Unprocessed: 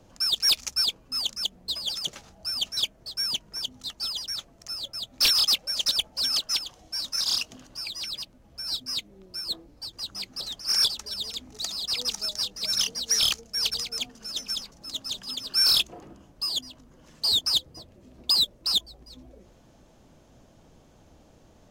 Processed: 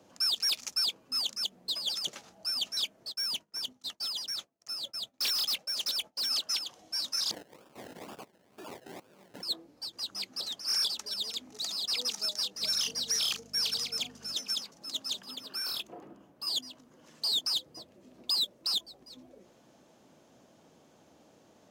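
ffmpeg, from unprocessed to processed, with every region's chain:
ffmpeg -i in.wav -filter_complex "[0:a]asettb=1/sr,asplit=3[link_01][link_02][link_03];[link_01]atrim=end=3.124[link_04];[link_02]atrim=start=3.12:end=6.31,asetpts=PTS-STARTPTS,afade=type=in:duration=0.004:curve=qsin,afade=type=out:start_time=3.186:duration=0.004:curve=qsin,agate=range=-33dB:threshold=-42dB:ratio=3:release=100:detection=peak,aeval=exprs='(tanh(20*val(0)+0.15)-tanh(0.15))/20':channel_layout=same[link_05];[link_03]atrim=start=6.306[link_06];[link_04][link_05]acrossfade=duration=0.004:curve1=hsin:curve2=qsin[link_07];[link_07][link_06]acrossfade=duration=0.004:curve1=qsin:curve2=hsin,asettb=1/sr,asplit=3[link_08][link_09][link_10];[link_08]atrim=end=7.314[link_11];[link_09]atrim=start=7.31:end=9.43,asetpts=PTS-STARTPTS,afade=type=in:duration=0.004:curve=qsin,afade=type=out:start_time=2.116:duration=0.004:curve=qsin,aeval=exprs='abs(val(0))':channel_layout=same,acompressor=threshold=-33dB:ratio=8:attack=3.2:release=140:knee=1:detection=peak,acrusher=samples=30:mix=1:aa=0.000001:lfo=1:lforange=18:lforate=2.1[link_12];[link_10]atrim=start=9.426[link_13];[link_11][link_12]acrossfade=duration=0.004:curve1=hsin:curve2=qsin[link_14];[link_14][link_13]acrossfade=duration=0.004:curve1=qsin:curve2=hsin,asettb=1/sr,asplit=3[link_15][link_16][link_17];[link_15]atrim=end=12.604[link_18];[link_16]atrim=start=12.6:end=14.35,asetpts=PTS-STARTPTS,afade=type=in:duration=0.004:curve=qsin,afade=type=out:start_time=1.746:duration=0.004:curve=qsin,asplit=2[link_19][link_20];[link_20]adelay=38,volume=-12.5dB[link_21];[link_19][link_21]amix=inputs=2:normalize=0,atrim=end_sample=77175,aeval=exprs='val(0)+0.00708*(sin(2*PI*50*n/s)+sin(2*PI*2*50*n/s)/2+sin(2*PI*3*50*n/s)/3+sin(2*PI*4*50*n/s)/4+sin(2*PI*5*50*n/s)/5)':channel_layout=same[link_22];[link_17]atrim=start=14.346[link_23];[link_18][link_22]acrossfade=duration=0.004:curve1=hsin:curve2=qsin[link_24];[link_24][link_23]acrossfade=duration=0.004:curve1=qsin:curve2=hsin,asettb=1/sr,asplit=3[link_25][link_26][link_27];[link_25]atrim=end=15.214[link_28];[link_26]atrim=start=15.21:end=16.47,asetpts=PTS-STARTPTS,afade=type=in:duration=0.004:curve=qsin,afade=type=out:start_time=1.256:duration=0.004:curve=qsin,equalizer=frequency=6200:width_type=o:width=2.1:gain=-9,acompressor=threshold=-30dB:ratio=5:attack=3.2:release=140:knee=1:detection=peak[link_29];[link_27]atrim=start=16.466[link_30];[link_28][link_29]acrossfade=duration=0.004:curve1=hsin:curve2=qsin[link_31];[link_31][link_30]acrossfade=duration=0.004:curve1=qsin:curve2=hsin,highpass=200,alimiter=limit=-20.5dB:level=0:latency=1:release=17,volume=-2dB" out.wav

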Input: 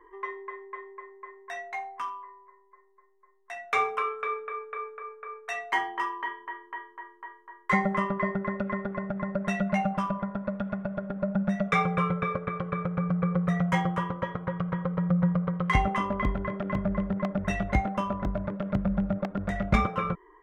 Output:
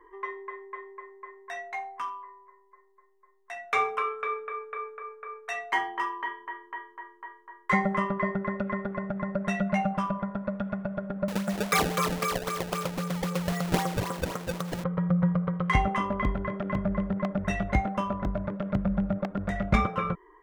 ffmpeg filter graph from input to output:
ffmpeg -i in.wav -filter_complex "[0:a]asettb=1/sr,asplit=3[link_01][link_02][link_03];[link_01]atrim=end=11.284[link_04];[link_02]atrim=start=11.28:end=14.84,asetpts=PTS-STARTPTS,afade=type=in:duration=0.004:curve=qsin,afade=type=out:start_time=3.556:duration=0.004:curve=qsin,aeval=exprs='val(0)+0.5*0.0188*sgn(val(0))':channel_layout=same,highpass=230,lowpass=6000,acrusher=samples=24:mix=1:aa=0.000001:lfo=1:lforange=38.4:lforate=3.8[link_05];[link_03]atrim=start=14.836[link_06];[link_04][link_05]acrossfade=duration=0.004:curve1=hsin:curve2=qsin[link_07];[link_07][link_06]acrossfade=duration=0.004:curve1=qsin:curve2=hsin" out.wav

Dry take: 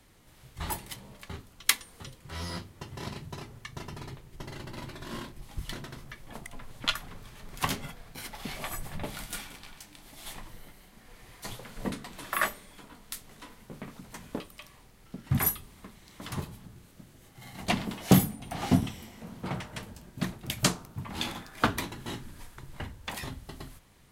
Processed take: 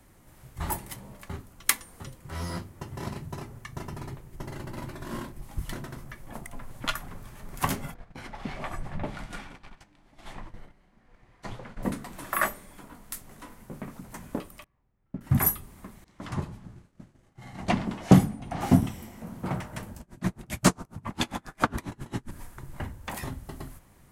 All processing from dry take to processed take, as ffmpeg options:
ffmpeg -i in.wav -filter_complex "[0:a]asettb=1/sr,asplit=3[link_01][link_02][link_03];[link_01]atrim=end=7.944[link_04];[link_02]atrim=start=7.94:end=11.83,asetpts=PTS-STARTPTS,afade=type=in:duration=0.004:curve=qsin,afade=type=out:start_time=3.886:duration=0.004:curve=qsin,agate=range=-10dB:threshold=-48dB:ratio=16:release=100:detection=peak,lowpass=4100[link_05];[link_03]atrim=start=11.826[link_06];[link_04][link_05]acrossfade=duration=0.004:curve1=hsin:curve2=qsin[link_07];[link_07][link_06]acrossfade=duration=0.004:curve1=qsin:curve2=hsin,asettb=1/sr,asplit=3[link_08][link_09][link_10];[link_08]atrim=end=14.644[link_11];[link_09]atrim=start=14.64:end=15.21,asetpts=PTS-STARTPTS,afade=type=in:duration=0.004:curve=qsin,afade=type=out:start_time=0.566:duration=0.004:curve=qsin,lowpass=2600,equalizer=frequency=70:width_type=o:width=2.5:gain=6.5,agate=range=-23dB:threshold=-41dB:ratio=16:release=100:detection=peak[link_12];[link_10]atrim=start=15.206[link_13];[link_11][link_12]acrossfade=duration=0.004:curve1=hsin:curve2=qsin[link_14];[link_14][link_13]acrossfade=duration=0.004:curve1=qsin:curve2=hsin,asettb=1/sr,asplit=3[link_15][link_16][link_17];[link_15]atrim=end=16.044[link_18];[link_16]atrim=start=16.04:end=18.61,asetpts=PTS-STARTPTS,afade=type=in:duration=0.004:curve=qsin,afade=type=out:start_time=2.566:duration=0.004:curve=qsin,lowpass=6000,agate=range=-33dB:threshold=-49dB:ratio=3:release=100:detection=peak[link_19];[link_17]atrim=start=18.606[link_20];[link_18][link_19]acrossfade=duration=0.004:curve1=hsin:curve2=qsin[link_21];[link_21][link_20]acrossfade=duration=0.004:curve1=qsin:curve2=hsin,asettb=1/sr,asplit=3[link_22][link_23][link_24];[link_22]atrim=end=20.004[link_25];[link_23]atrim=start=20:end=22.31,asetpts=PTS-STARTPTS,afade=type=in:duration=0.004:curve=qsin,afade=type=out:start_time=2.306:duration=0.004:curve=qsin,lowpass=9700,aeval=exprs='0.422*sin(PI/2*1.58*val(0)/0.422)':channel_layout=same,aeval=exprs='val(0)*pow(10,-32*(0.5-0.5*cos(2*PI*7.4*n/s))/20)':channel_layout=same[link_26];[link_24]atrim=start=22.306[link_27];[link_25][link_26]acrossfade=duration=0.004:curve1=hsin:curve2=qsin[link_28];[link_28][link_27]acrossfade=duration=0.004:curve1=qsin:curve2=hsin,equalizer=frequency=3700:width_type=o:width=1.5:gain=-9.5,bandreject=frequency=450:width=12,volume=4dB" out.wav

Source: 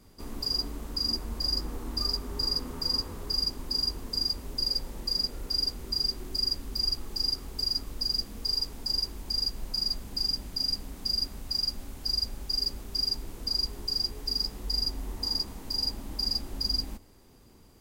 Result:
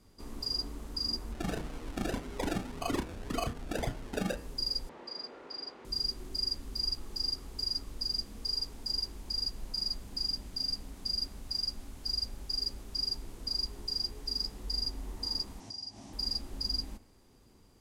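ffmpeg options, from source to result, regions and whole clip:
ffmpeg -i in.wav -filter_complex "[0:a]asettb=1/sr,asplit=3[link_01][link_02][link_03];[link_01]atrim=end=1.324[link_04];[link_02]atrim=start=1.32:end=4.37,asetpts=PTS-STARTPTS,afade=type=in:duration=0.004:curve=qsin,afade=type=out:start_time=3.046:duration=0.004:curve=qsin,acrusher=samples=34:mix=1:aa=0.000001:lfo=1:lforange=20.4:lforate=1.8,asplit=2[link_05][link_06];[link_06]adelay=32,volume=-7dB[link_07];[link_05][link_07]amix=inputs=2:normalize=0,atrim=end_sample=134505[link_08];[link_03]atrim=start=4.366[link_09];[link_04][link_08]acrossfade=duration=0.004:curve1=hsin:curve2=qsin[link_10];[link_10][link_09]acrossfade=duration=0.004:curve1=qsin:curve2=hsin,asettb=1/sr,asplit=3[link_11][link_12][link_13];[link_11]atrim=end=4.894[link_14];[link_12]atrim=start=4.89:end=5.85,asetpts=PTS-STARTPTS,afade=type=in:duration=0.004:curve=qsin,afade=type=out:start_time=0.956:duration=0.004:curve=qsin,volume=22dB,asoftclip=hard,volume=-22dB,highpass=440,lowpass=2200,acontrast=48[link_15];[link_13]atrim=start=5.846[link_16];[link_14][link_15]acrossfade=duration=0.004:curve1=hsin:curve2=qsin[link_17];[link_17][link_16]acrossfade=duration=0.004:curve1=qsin:curve2=hsin,asettb=1/sr,asplit=3[link_18][link_19][link_20];[link_18]atrim=end=15.604[link_21];[link_19]atrim=start=15.6:end=16.13,asetpts=PTS-STARTPTS,afade=type=in:duration=0.004:curve=qsin,afade=type=out:start_time=0.526:duration=0.004:curve=qsin,highpass=110,equalizer=frequency=110:width_type=q:width=4:gain=9,equalizer=frequency=480:width_type=q:width=4:gain=-9,equalizer=frequency=710:width_type=q:width=4:gain=8,equalizer=frequency=1400:width_type=q:width=4:gain=-5,equalizer=frequency=5700:width_type=q:width=4:gain=10,lowpass=frequency=9500:width=0.5412,lowpass=frequency=9500:width=1.3066,acompressor=threshold=-39dB:ratio=2.5:attack=3.2:release=140:knee=1:detection=peak[link_22];[link_20]atrim=start=16.126[link_23];[link_21][link_22]acrossfade=duration=0.004:curve1=hsin:curve2=qsin[link_24];[link_24][link_23]acrossfade=duration=0.004:curve1=qsin:curve2=hsin,lowpass=12000,bandreject=frequency=78.84:width_type=h:width=4,bandreject=frequency=157.68:width_type=h:width=4,bandreject=frequency=236.52:width_type=h:width=4,bandreject=frequency=315.36:width_type=h:width=4,bandreject=frequency=394.2:width_type=h:width=4,bandreject=frequency=473.04:width_type=h:width=4,bandreject=frequency=551.88:width_type=h:width=4,bandreject=frequency=630.72:width_type=h:width=4,bandreject=frequency=709.56:width_type=h:width=4,bandreject=frequency=788.4:width_type=h:width=4,bandreject=frequency=867.24:width_type=h:width=4,bandreject=frequency=946.08:width_type=h:width=4,bandreject=frequency=1024.92:width_type=h:width=4,bandreject=frequency=1103.76:width_type=h:width=4,bandreject=frequency=1182.6:width_type=h:width=4,bandreject=frequency=1261.44:width_type=h:width=4,bandreject=frequency=1340.28:width_type=h:width=4,bandreject=frequency=1419.12:width_type=h:width=4,bandreject=frequency=1497.96:width_type=h:width=4,bandreject=frequency=1576.8:width_type=h:width=4,bandreject=frequency=1655.64:width_type=h:width=4,bandreject=frequency=1734.48:width_type=h:width=4,bandreject=frequency=1813.32:width_type=h:width=4,bandreject=frequency=1892.16:width_type=h:width=4,bandreject=frequency=1971:width_type=h:width=4,bandreject=frequency=2049.84:width_type=h:width=4,bandreject=frequency=2128.68:width_type=h:width=4,bandreject=frequency=2207.52:width_type=h:width=4,bandreject=frequency=2286.36:width_type=h:width=4,bandreject=frequency=2365.2:width_type=h:width=4,bandreject=frequency=2444.04:width_type=h:width=4,bandreject=frequency=2522.88:width_type=h:width=4,bandreject=frequency=2601.72:width_type=h:width=4,bandreject=frequency=2680.56:width_type=h:width=4,bandreject=frequency=2759.4:width_type=h:width=4,volume=-4.5dB" out.wav

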